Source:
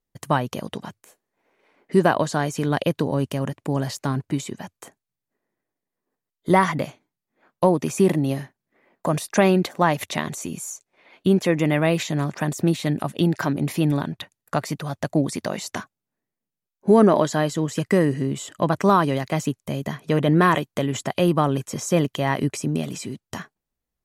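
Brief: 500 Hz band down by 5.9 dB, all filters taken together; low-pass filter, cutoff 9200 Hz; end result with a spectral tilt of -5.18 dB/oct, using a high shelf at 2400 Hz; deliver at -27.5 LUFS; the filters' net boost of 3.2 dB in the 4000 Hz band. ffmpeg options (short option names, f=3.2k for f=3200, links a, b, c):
-af "lowpass=9.2k,equalizer=f=500:t=o:g=-8,highshelf=f=2.4k:g=-3,equalizer=f=4k:t=o:g=7,volume=-3dB"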